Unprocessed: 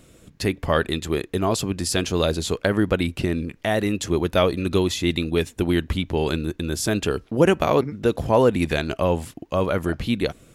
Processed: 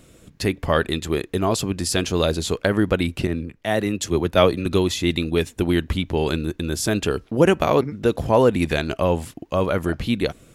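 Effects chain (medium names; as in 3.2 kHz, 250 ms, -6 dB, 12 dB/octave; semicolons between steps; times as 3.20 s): 3.27–4.66 s: three bands expanded up and down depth 70%; trim +1 dB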